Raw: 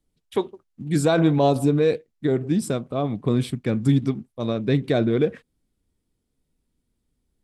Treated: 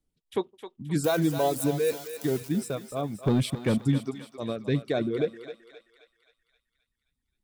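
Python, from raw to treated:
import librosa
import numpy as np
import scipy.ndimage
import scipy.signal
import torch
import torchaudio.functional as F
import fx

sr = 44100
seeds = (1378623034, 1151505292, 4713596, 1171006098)

y = fx.crossing_spikes(x, sr, level_db=-18.0, at=(1.04, 2.49))
y = fx.dereverb_blind(y, sr, rt60_s=1.9)
y = fx.leveller(y, sr, passes=2, at=(3.23, 3.78))
y = fx.echo_thinned(y, sr, ms=264, feedback_pct=57, hz=760.0, wet_db=-8)
y = y * librosa.db_to_amplitude(-5.0)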